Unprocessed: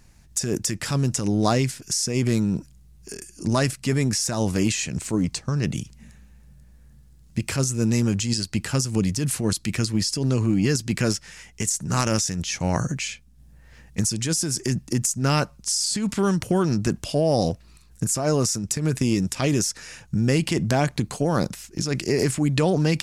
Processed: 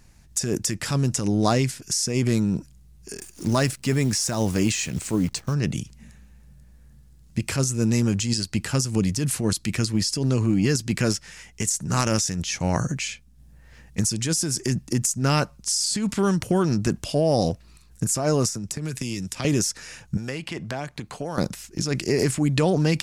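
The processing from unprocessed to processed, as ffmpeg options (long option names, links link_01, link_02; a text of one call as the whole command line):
ffmpeg -i in.wav -filter_complex "[0:a]asplit=3[link_01][link_02][link_03];[link_01]afade=type=out:start_time=3.17:duration=0.02[link_04];[link_02]acrusher=bits=8:dc=4:mix=0:aa=0.000001,afade=type=in:start_time=3.17:duration=0.02,afade=type=out:start_time=5.53:duration=0.02[link_05];[link_03]afade=type=in:start_time=5.53:duration=0.02[link_06];[link_04][link_05][link_06]amix=inputs=3:normalize=0,asettb=1/sr,asplit=3[link_07][link_08][link_09];[link_07]atrim=end=18.484[link_10];[link_08]atrim=start=18.48:end=19.45,asetpts=PTS-STARTPTS,afade=type=in:duration=0.004:curve=qsin,afade=type=out:start_time=0.966:duration=0.004:curve=qsin,acrossover=split=160|1700[link_11][link_12][link_13];[link_11]acompressor=threshold=-34dB:ratio=4[link_14];[link_12]acompressor=threshold=-33dB:ratio=4[link_15];[link_13]acompressor=threshold=-30dB:ratio=4[link_16];[link_14][link_15][link_16]amix=inputs=3:normalize=0[link_17];[link_09]atrim=start=19.446[link_18];[link_10][link_17]acrossfade=duration=0.004:curve1=hsin:curve2=qsin[link_19];[link_19][link_18]acrossfade=duration=0.004:curve1=qsin:curve2=hsin,asettb=1/sr,asplit=3[link_20][link_21][link_22];[link_20]atrim=end=20.174[link_23];[link_21]atrim=start=20.17:end=21.38,asetpts=PTS-STARTPTS,afade=type=in:duration=0.004:curve=qsin,afade=type=out:start_time=1.206:duration=0.004:curve=qsin,acrossover=split=550|3900[link_24][link_25][link_26];[link_24]acompressor=threshold=-34dB:ratio=4[link_27];[link_25]acompressor=threshold=-32dB:ratio=4[link_28];[link_26]acompressor=threshold=-48dB:ratio=4[link_29];[link_27][link_28][link_29]amix=inputs=3:normalize=0[link_30];[link_22]atrim=start=21.376[link_31];[link_23][link_30]acrossfade=duration=0.004:curve1=hsin:curve2=qsin[link_32];[link_32][link_31]acrossfade=duration=0.004:curve1=qsin:curve2=hsin" out.wav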